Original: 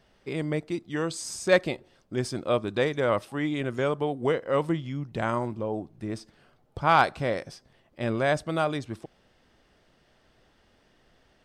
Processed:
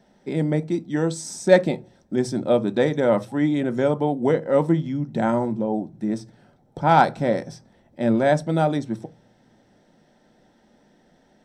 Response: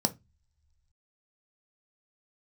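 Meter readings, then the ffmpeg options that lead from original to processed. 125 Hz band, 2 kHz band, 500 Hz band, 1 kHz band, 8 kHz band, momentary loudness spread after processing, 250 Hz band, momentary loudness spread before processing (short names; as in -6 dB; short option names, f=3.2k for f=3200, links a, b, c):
+6.5 dB, +0.5 dB, +6.0 dB, +4.5 dB, n/a, 10 LU, +9.0 dB, 12 LU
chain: -filter_complex "[0:a]asplit=2[a][b];[1:a]atrim=start_sample=2205,highshelf=f=7.7k:g=-4.5[c];[b][c]afir=irnorm=-1:irlink=0,volume=-3.5dB[d];[a][d]amix=inputs=2:normalize=0,volume=-4dB"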